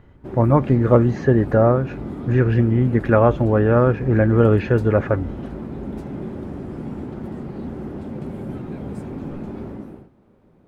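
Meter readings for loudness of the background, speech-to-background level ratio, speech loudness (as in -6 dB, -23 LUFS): -31.5 LUFS, 14.0 dB, -17.5 LUFS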